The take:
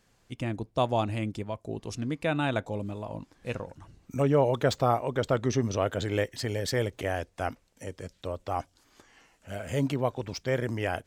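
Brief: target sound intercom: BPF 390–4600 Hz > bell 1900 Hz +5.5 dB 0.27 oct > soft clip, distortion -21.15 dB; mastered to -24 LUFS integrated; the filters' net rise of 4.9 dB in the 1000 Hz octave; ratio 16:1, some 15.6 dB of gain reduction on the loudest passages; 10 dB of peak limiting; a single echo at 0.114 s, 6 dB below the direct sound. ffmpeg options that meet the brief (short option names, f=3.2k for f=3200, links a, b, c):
-af "equalizer=f=1k:t=o:g=7,acompressor=threshold=-32dB:ratio=16,alimiter=level_in=5.5dB:limit=-24dB:level=0:latency=1,volume=-5.5dB,highpass=390,lowpass=4.6k,equalizer=f=1.9k:t=o:w=0.27:g=5.5,aecho=1:1:114:0.501,asoftclip=threshold=-30.5dB,volume=20dB"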